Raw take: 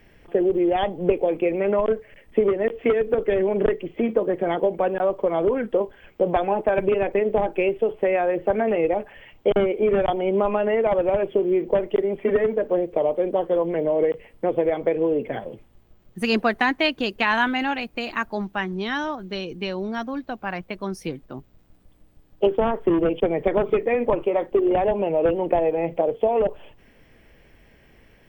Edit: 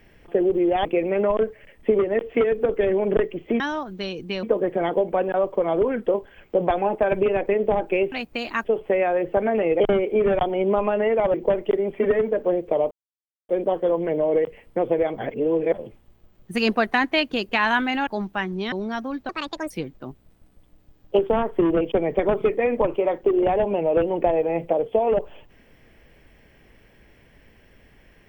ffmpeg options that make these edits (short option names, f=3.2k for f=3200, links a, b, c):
-filter_complex "[0:a]asplit=15[a][b][c][d][e][f][g][h][i][j][k][l][m][n][o];[a]atrim=end=0.852[p];[b]atrim=start=1.338:end=4.092[q];[c]atrim=start=18.918:end=19.752[r];[d]atrim=start=4.088:end=7.782[s];[e]atrim=start=17.738:end=18.272[t];[f]atrim=start=7.778:end=8.932[u];[g]atrim=start=9.468:end=11.012[v];[h]atrim=start=11.588:end=13.16,asetpts=PTS-STARTPTS,afade=t=out:st=1.568:d=0.004:c=hsin,apad=pad_dur=0.58[w];[i]atrim=start=13.16:end=14.852,asetpts=PTS-STARTPTS,afade=t=in:d=0.004:c=hsin[x];[j]atrim=start=14.848:end=15.412,asetpts=PTS-STARTPTS,areverse[y];[k]atrim=start=15.408:end=17.742[z];[l]atrim=start=18.268:end=18.922[aa];[m]atrim=start=19.748:end=20.324[ab];[n]atrim=start=20.32:end=20.99,asetpts=PTS-STARTPTS,asetrate=71001,aresample=44100,atrim=end_sample=18352,asetpts=PTS-STARTPTS[ac];[o]atrim=start=20.986[ad];[p][q]acrossfade=d=0.004:c1=hsin:c2=hsin[ae];[ae][r]acrossfade=d=0.004:c1=hsin:c2=hsin[af];[af][s]acrossfade=d=0.004:c1=hsin:c2=hsin[ag];[ag][t]acrossfade=d=0.004:c1=hsin:c2=hsin[ah];[ah][u]acrossfade=d=0.004:c1=hsin:c2=hsin[ai];[ai][v]acrossfade=d=0.004:c1=hsin:c2=hsin[aj];[w][x]concat=n=2:v=0:a=1[ak];[aj][ak]acrossfade=d=0.004:c1=hsin:c2=hsin[al];[al][y]acrossfade=d=0.004:c1=hsin:c2=hsin[am];[am][z]acrossfade=d=0.004:c1=hsin:c2=hsin[an];[an][aa]acrossfade=d=0.004:c1=hsin:c2=hsin[ao];[ao][ab]acrossfade=d=0.004:c1=hsin:c2=hsin[ap];[ap][ac]acrossfade=d=0.004:c1=hsin:c2=hsin[aq];[aq][ad]acrossfade=d=0.004:c1=hsin:c2=hsin"